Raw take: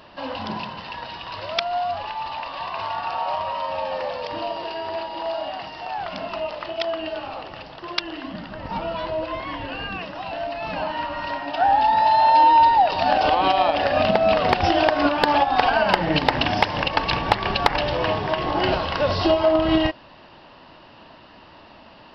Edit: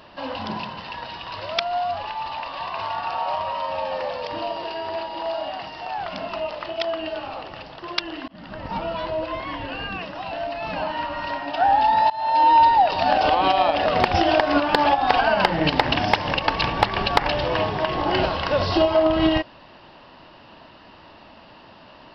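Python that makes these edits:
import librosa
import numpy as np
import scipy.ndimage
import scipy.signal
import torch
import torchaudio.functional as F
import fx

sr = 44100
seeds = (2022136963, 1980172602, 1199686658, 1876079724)

y = fx.edit(x, sr, fx.fade_in_span(start_s=8.28, length_s=0.25),
    fx.fade_in_from(start_s=12.1, length_s=0.43, floor_db=-22.0),
    fx.cut(start_s=13.86, length_s=0.49), tone=tone)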